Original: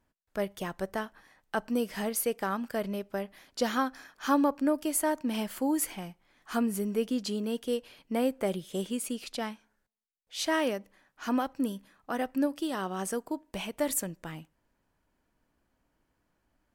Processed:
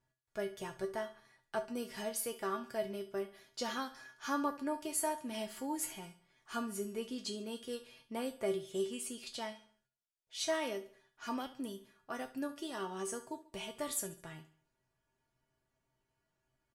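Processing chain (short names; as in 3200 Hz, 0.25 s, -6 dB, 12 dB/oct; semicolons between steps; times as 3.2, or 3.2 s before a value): LPF 9200 Hz 12 dB/oct; high shelf 5600 Hz +6 dB; resonator 130 Hz, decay 0.23 s, harmonics odd, mix 90%; on a send: feedback echo 70 ms, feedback 43%, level -16 dB; on the sum: gain +4.5 dB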